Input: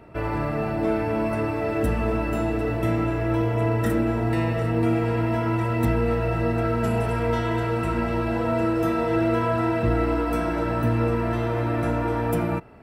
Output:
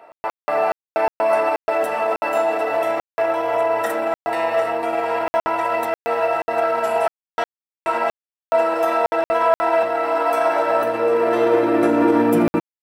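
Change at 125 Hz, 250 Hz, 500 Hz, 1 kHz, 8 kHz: under -15 dB, -0.5 dB, +7.0 dB, +8.5 dB, n/a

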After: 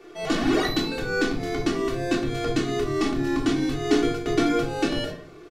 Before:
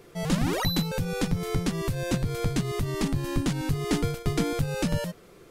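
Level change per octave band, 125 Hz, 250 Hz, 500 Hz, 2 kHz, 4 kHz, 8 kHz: -5.5, +5.0, +6.0, +6.5, +3.5, -1.5 dB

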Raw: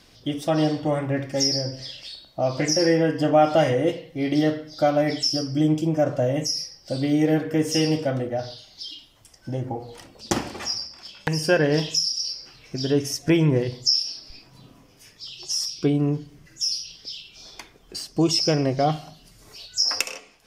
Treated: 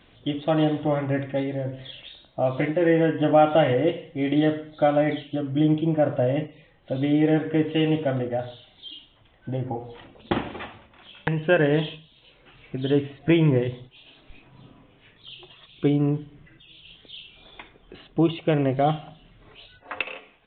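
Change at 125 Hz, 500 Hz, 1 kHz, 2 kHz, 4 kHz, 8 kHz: 0.0 dB, 0.0 dB, 0.0 dB, 0.0 dB, -12.0 dB, under -40 dB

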